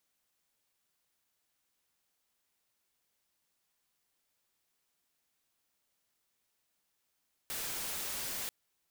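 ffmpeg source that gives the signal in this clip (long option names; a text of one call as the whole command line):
ffmpeg -f lavfi -i "anoisesrc=color=white:amplitude=0.0206:duration=0.99:sample_rate=44100:seed=1" out.wav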